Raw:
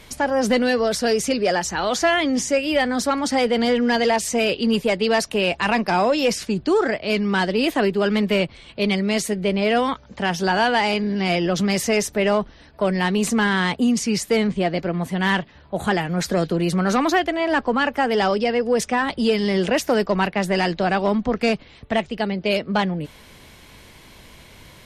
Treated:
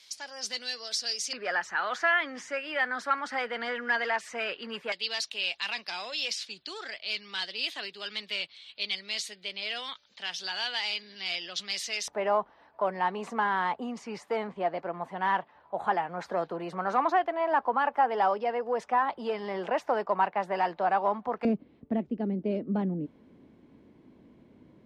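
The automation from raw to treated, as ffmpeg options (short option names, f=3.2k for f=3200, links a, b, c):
-af "asetnsamples=n=441:p=0,asendcmd='1.33 bandpass f 1500;4.92 bandpass f 3900;12.08 bandpass f 910;21.45 bandpass f 270',bandpass=f=4.9k:t=q:w=2.3:csg=0"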